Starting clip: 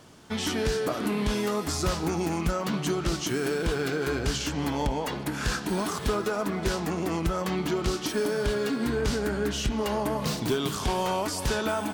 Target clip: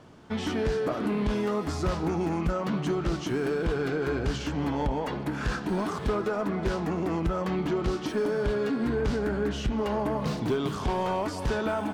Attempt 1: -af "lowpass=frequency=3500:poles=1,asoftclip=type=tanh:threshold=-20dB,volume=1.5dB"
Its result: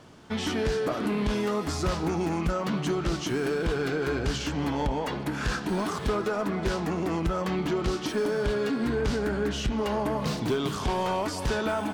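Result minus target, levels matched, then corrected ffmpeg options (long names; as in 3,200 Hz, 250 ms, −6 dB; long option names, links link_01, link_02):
4,000 Hz band +4.0 dB
-af "lowpass=frequency=1600:poles=1,asoftclip=type=tanh:threshold=-20dB,volume=1.5dB"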